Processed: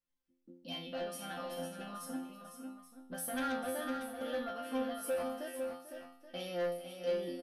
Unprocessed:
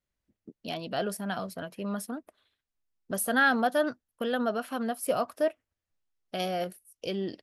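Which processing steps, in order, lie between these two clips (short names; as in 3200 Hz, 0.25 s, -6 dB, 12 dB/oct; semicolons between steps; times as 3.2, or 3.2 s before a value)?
in parallel at -0.5 dB: limiter -23 dBFS, peak gain reduction 10 dB; on the sum: resonator bank F3 fifth, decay 0.53 s; soft clip -37.5 dBFS, distortion -10 dB; notch 7100 Hz, Q 9.9; comb 3.5 ms, depth 40%; on a send: tapped delay 0.444/0.505/0.828 s -13.5/-7.5/-14 dB; on the sum: gain +5.5 dB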